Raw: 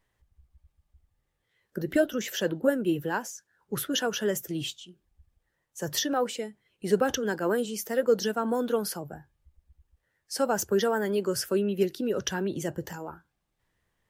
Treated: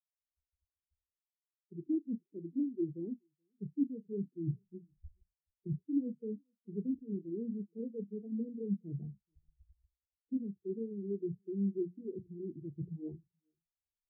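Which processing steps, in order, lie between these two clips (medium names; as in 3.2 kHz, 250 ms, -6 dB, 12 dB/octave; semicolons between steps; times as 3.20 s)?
Doppler pass-by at 6.23 s, 11 m/s, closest 16 m; recorder AGC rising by 6.3 dB/s; low-pass that closes with the level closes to 360 Hz, closed at -25.5 dBFS; inverse Chebyshev band-stop 1.6–4 kHz, stop band 70 dB; peaking EQ 540 Hz -11 dB 0.33 oct; hum notches 60/120/180/240 Hz; reverse; compression 10:1, threshold -45 dBFS, peak gain reduction 22 dB; reverse; doubling 35 ms -10.5 dB; on a send: delay 428 ms -16.5 dB; on the sum: spectral contrast expander 2.5:1; trim +13.5 dB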